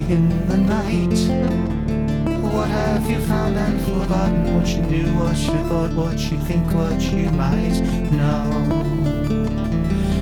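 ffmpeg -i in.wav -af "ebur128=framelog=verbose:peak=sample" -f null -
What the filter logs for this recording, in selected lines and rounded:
Integrated loudness:
  I:         -19.8 LUFS
  Threshold: -29.8 LUFS
Loudness range:
  LRA:         0.4 LU
  Threshold: -39.9 LUFS
  LRA low:   -20.1 LUFS
  LRA high:  -19.6 LUFS
Sample peak:
  Peak:       -5.8 dBFS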